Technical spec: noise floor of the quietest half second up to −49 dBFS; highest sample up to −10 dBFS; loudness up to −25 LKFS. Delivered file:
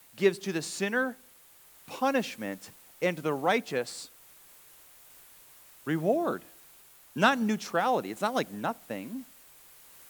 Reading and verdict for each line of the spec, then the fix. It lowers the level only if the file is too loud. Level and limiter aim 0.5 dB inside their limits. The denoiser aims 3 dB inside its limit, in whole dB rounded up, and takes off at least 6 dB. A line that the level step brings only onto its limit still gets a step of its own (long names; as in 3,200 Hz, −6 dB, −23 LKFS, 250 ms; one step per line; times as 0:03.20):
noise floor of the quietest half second −57 dBFS: in spec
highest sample −9.0 dBFS: out of spec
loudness −30.0 LKFS: in spec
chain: brickwall limiter −10.5 dBFS